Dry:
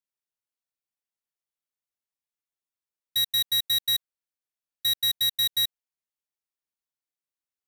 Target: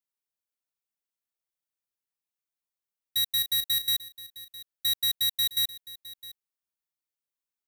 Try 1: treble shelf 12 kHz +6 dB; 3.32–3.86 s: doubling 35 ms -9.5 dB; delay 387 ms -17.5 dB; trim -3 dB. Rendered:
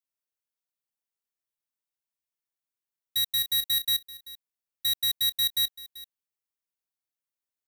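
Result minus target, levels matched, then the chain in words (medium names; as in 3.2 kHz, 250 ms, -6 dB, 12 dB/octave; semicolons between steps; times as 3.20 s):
echo 274 ms early
treble shelf 12 kHz +6 dB; 3.32–3.86 s: doubling 35 ms -9.5 dB; delay 661 ms -17.5 dB; trim -3 dB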